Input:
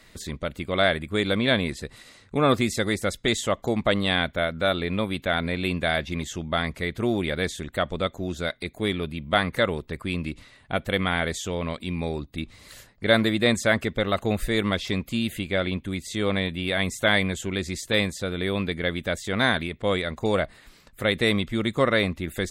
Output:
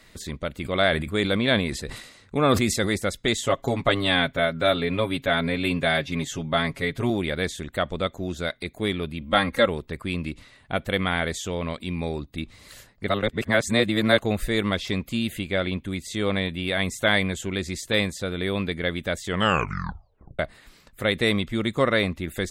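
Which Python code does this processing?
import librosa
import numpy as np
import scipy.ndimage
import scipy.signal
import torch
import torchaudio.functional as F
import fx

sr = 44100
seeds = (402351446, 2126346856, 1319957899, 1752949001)

y = fx.sustainer(x, sr, db_per_s=70.0, at=(0.62, 2.96), fade=0.02)
y = fx.comb(y, sr, ms=7.3, depth=0.78, at=(3.46, 7.1))
y = fx.comb(y, sr, ms=3.7, depth=0.74, at=(9.21, 9.68))
y = fx.edit(y, sr, fx.reverse_span(start_s=13.08, length_s=1.1),
    fx.tape_stop(start_s=19.25, length_s=1.14), tone=tone)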